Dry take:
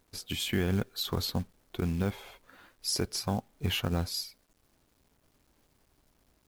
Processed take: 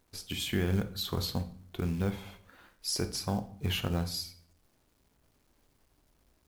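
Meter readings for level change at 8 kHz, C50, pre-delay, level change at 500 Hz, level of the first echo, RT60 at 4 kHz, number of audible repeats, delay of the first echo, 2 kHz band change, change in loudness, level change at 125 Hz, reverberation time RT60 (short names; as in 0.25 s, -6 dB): -1.5 dB, 13.5 dB, 20 ms, -1.0 dB, none, 0.45 s, none, none, -1.5 dB, -1.0 dB, -0.5 dB, 0.55 s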